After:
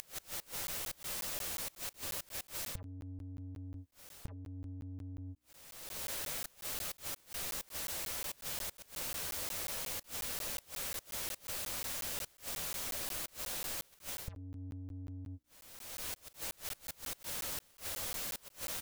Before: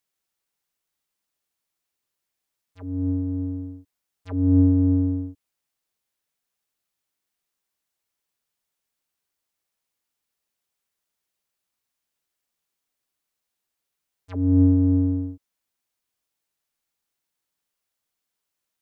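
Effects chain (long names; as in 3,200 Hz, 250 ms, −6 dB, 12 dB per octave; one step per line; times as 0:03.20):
in parallel at +1 dB: upward compression, threshold −20 dBFS
on the sum: double-tracking delay 12 ms −9 dB
reversed playback
downward compressor 12 to 1, threshold −28 dBFS, peak gain reduction 21.5 dB
reversed playback
low-shelf EQ 120 Hz +9 dB
mains-hum notches 60/120/180/240/300/360/420 Hz
gate with flip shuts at −34 dBFS, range −26 dB
parametric band 550 Hz +6 dB 0.38 octaves
regular buffer underruns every 0.18 s, samples 512, zero, from 0:00.67
level +6 dB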